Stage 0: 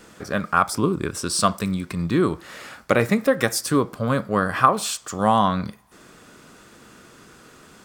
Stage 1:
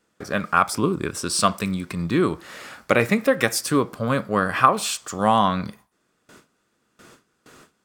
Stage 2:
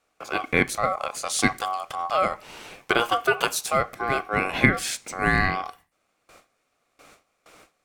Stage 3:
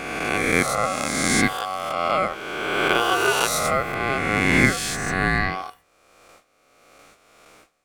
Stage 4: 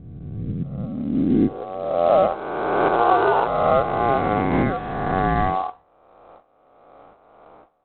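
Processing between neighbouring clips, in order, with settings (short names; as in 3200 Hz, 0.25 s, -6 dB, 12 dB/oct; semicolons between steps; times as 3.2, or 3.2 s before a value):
dynamic EQ 2500 Hz, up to +5 dB, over -39 dBFS, Q 2.1; gate with hold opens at -36 dBFS; low shelf 93 Hz -5 dB
ring modulator 940 Hz
spectral swells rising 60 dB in 1.94 s; gain -2 dB
limiter -9 dBFS, peak gain reduction 7.5 dB; low-pass sweep 120 Hz -> 860 Hz, 0.3–2.41; gain +2.5 dB; IMA ADPCM 32 kbps 8000 Hz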